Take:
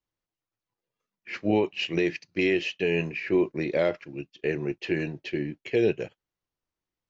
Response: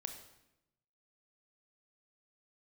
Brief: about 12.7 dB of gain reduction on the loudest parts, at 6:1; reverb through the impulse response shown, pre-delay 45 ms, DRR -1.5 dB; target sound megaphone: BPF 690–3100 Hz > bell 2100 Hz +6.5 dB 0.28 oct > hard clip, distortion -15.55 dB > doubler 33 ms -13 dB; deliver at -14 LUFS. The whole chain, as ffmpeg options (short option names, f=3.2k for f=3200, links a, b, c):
-filter_complex "[0:a]acompressor=threshold=-33dB:ratio=6,asplit=2[a][b];[1:a]atrim=start_sample=2205,adelay=45[c];[b][c]afir=irnorm=-1:irlink=0,volume=4dB[d];[a][d]amix=inputs=2:normalize=0,highpass=690,lowpass=3.1k,equalizer=f=2.1k:t=o:w=0.28:g=6.5,asoftclip=type=hard:threshold=-30dB,asplit=2[e][f];[f]adelay=33,volume=-13dB[g];[e][g]amix=inputs=2:normalize=0,volume=23.5dB"